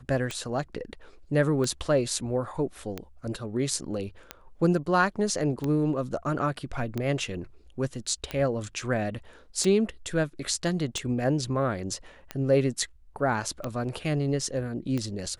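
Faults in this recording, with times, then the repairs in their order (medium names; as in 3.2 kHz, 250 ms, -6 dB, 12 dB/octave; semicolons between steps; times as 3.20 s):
tick 45 rpm -17 dBFS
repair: de-click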